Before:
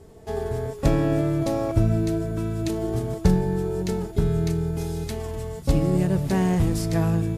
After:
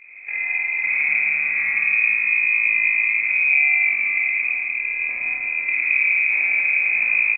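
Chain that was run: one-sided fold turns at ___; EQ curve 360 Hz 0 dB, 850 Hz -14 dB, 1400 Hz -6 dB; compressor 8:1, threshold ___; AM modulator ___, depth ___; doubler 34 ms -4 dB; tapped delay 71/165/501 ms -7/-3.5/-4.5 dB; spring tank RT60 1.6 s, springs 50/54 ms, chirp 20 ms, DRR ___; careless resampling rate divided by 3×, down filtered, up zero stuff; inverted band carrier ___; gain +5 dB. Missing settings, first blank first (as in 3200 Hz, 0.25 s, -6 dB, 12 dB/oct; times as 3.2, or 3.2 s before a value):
-17.5 dBFS, -28 dBFS, 45 Hz, 75%, -4 dB, 2500 Hz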